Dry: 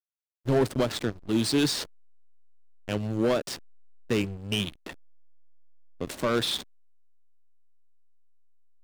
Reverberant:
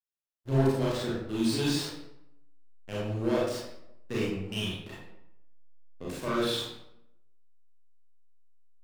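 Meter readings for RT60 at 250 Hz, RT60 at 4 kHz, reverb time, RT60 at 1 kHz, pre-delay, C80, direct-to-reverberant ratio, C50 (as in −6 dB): 0.90 s, 0.55 s, 0.80 s, 0.80 s, 29 ms, 4.0 dB, −7.5 dB, −0.5 dB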